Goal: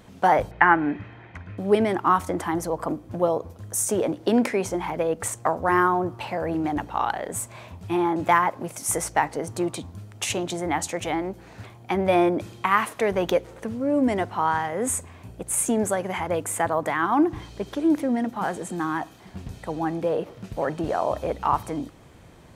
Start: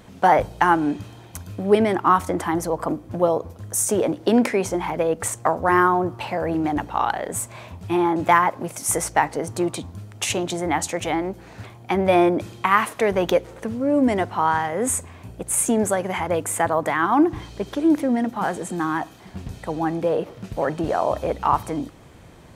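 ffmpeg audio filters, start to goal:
-filter_complex "[0:a]asettb=1/sr,asplit=3[s0][s1][s2];[s0]atrim=end=0.514[s3];[s1]atrim=start=0.51:end=1.58,asetpts=PTS-STARTPTS,afade=t=in:d=0.004:c=qsin,afade=t=out:st=1.066:d=0.004:c=qsin,lowpass=f=2000:t=q:w=3.7[s4];[s2]atrim=start=1.576[s5];[s3][s4]acrossfade=d=0.004:c1=hsin:c2=qsin[s6];[s6][s5]acrossfade=d=0.004:c1=qsin:c2=hsin,volume=0.708"

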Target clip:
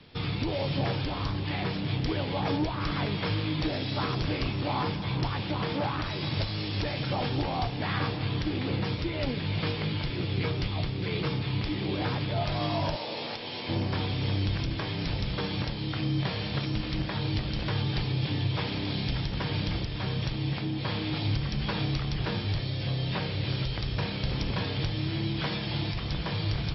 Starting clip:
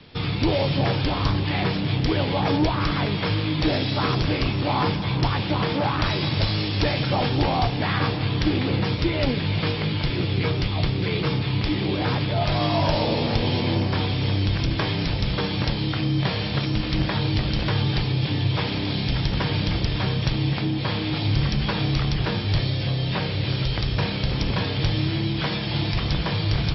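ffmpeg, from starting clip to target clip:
-filter_complex "[0:a]alimiter=limit=0.224:level=0:latency=1:release=385,asettb=1/sr,asplit=3[s0][s1][s2];[s0]atrim=end=12.964[s3];[s1]atrim=start=12.96:end=13.69,asetpts=PTS-STARTPTS,afade=t=in:d=0.004:c=qsin,afade=t=out:st=0.726:d=0.004:c=qsin,highpass=f=780:p=1[s4];[s2]atrim=start=13.686[s5];[s3][s4]acrossfade=d=0.004:c1=hsin:c2=qsin[s6];[s6][s5]acrossfade=d=0.004:c1=qsin:c2=hsin,volume=0.531"

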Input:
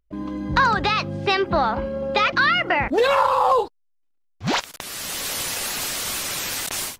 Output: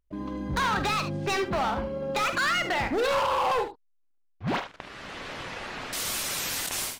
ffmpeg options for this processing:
-filter_complex "[0:a]asettb=1/sr,asplit=3[s0][s1][s2];[s0]atrim=end=3.644[s3];[s1]atrim=start=3.64:end=5.93,asetpts=PTS-STARTPTS,afade=t=in:d=0.004:c=qsin,afade=t=out:st=2.286:d=0.004:c=qsin,lowpass=2200[s4];[s2]atrim=start=5.926[s5];[s3][s4]acrossfade=d=0.004:c1=hsin:c2=qsin[s6];[s6][s5]acrossfade=d=0.004:c1=qsin:c2=hsin,asoftclip=type=hard:threshold=0.106,aecho=1:1:47|74:0.266|0.282,volume=0.631"

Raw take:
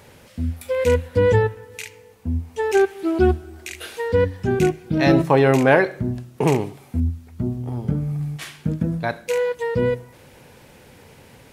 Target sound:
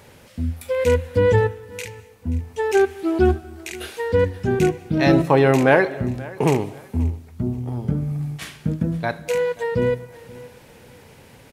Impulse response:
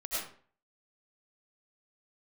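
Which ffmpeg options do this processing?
-filter_complex "[0:a]aecho=1:1:531|1062:0.0944|0.0264,asplit=2[s0][s1];[1:a]atrim=start_sample=2205,adelay=98[s2];[s1][s2]afir=irnorm=-1:irlink=0,volume=0.0447[s3];[s0][s3]amix=inputs=2:normalize=0"

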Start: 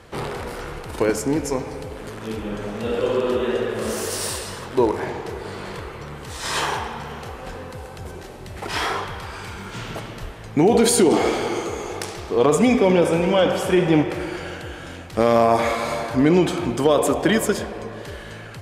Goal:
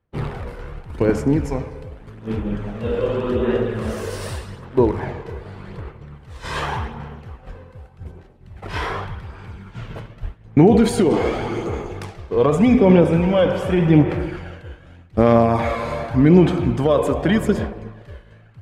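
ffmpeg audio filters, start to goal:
-af "agate=range=0.0224:threshold=0.0501:ratio=3:detection=peak,bass=f=250:g=9,treble=f=4000:g=-11,aphaser=in_gain=1:out_gain=1:delay=2:decay=0.33:speed=0.85:type=sinusoidal,volume=0.794"

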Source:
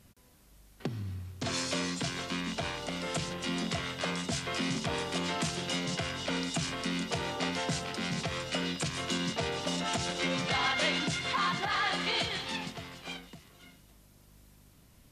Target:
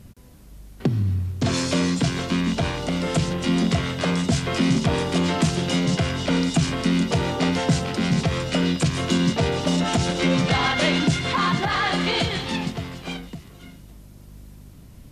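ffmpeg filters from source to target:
-af "lowshelf=f=450:g=10.5,volume=2"

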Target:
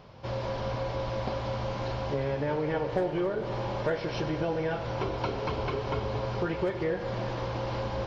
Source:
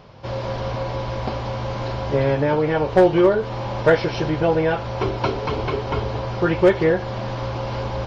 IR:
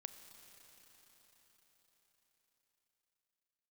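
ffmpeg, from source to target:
-filter_complex "[0:a]acompressor=threshold=0.0794:ratio=4[s0];[1:a]atrim=start_sample=2205[s1];[s0][s1]afir=irnorm=-1:irlink=0"

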